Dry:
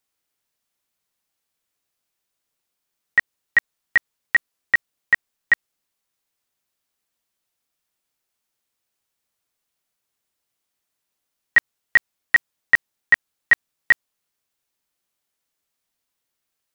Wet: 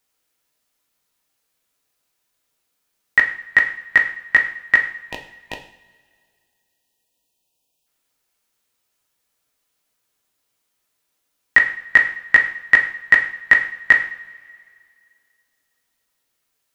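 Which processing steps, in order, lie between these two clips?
time-frequency box 5.07–7.86 s, 1–2.4 kHz -24 dB; two-slope reverb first 0.52 s, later 2.3 s, from -20 dB, DRR 2.5 dB; trim +4.5 dB

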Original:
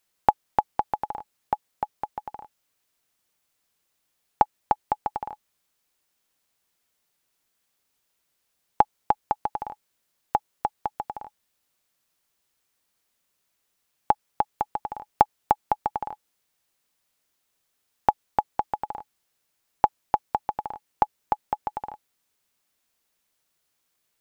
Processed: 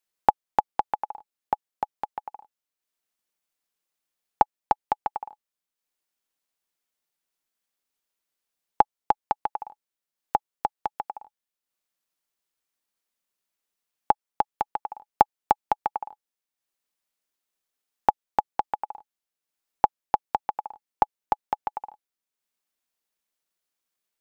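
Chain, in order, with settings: transient shaper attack +10 dB, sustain -5 dB; peaking EQ 90 Hz -14.5 dB 0.77 oct; trim -9.5 dB

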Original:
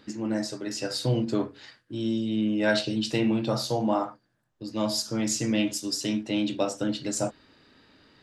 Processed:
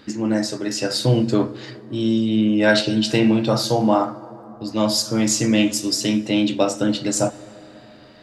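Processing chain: plate-style reverb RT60 3.9 s, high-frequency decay 0.35×, DRR 16.5 dB; trim +8 dB

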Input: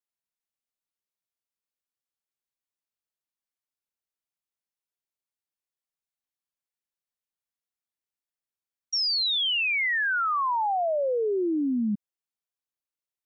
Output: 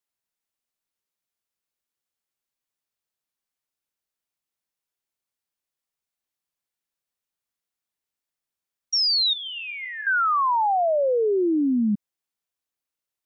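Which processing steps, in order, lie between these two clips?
9.33–10.07 s: feedback comb 350 Hz, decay 0.85 s, mix 80%; trim +4.5 dB

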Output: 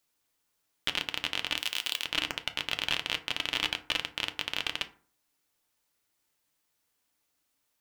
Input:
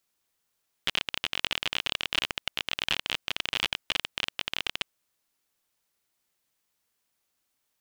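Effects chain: 1.57–2.05 s: RIAA curve recording; peak limiter -11.5 dBFS, peak gain reduction 7.5 dB; reverberation RT60 0.45 s, pre-delay 3 ms, DRR 7 dB

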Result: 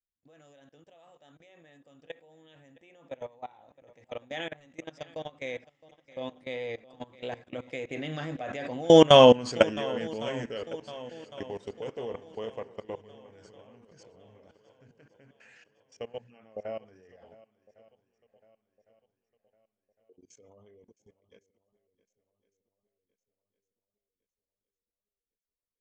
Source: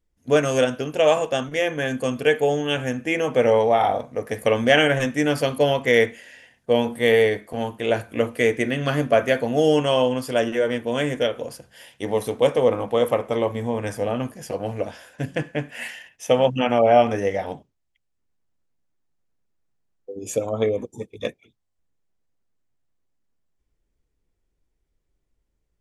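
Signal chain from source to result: Doppler pass-by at 9.26 s, 27 m/s, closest 6.8 m; steep low-pass 7.3 kHz 48 dB/octave; treble shelf 4.4 kHz +2.5 dB; level held to a coarse grid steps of 22 dB; shuffle delay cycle 1107 ms, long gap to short 1.5:1, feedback 41%, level -19.5 dB; trim +9 dB

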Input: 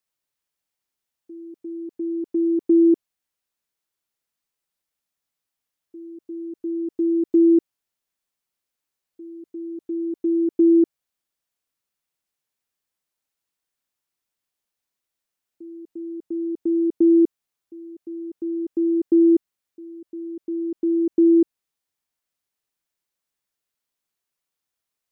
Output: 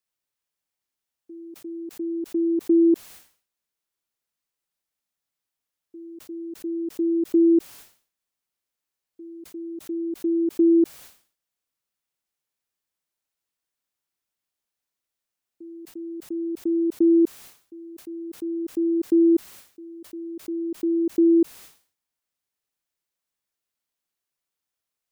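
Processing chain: decay stretcher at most 130 dB/s; trim -2 dB

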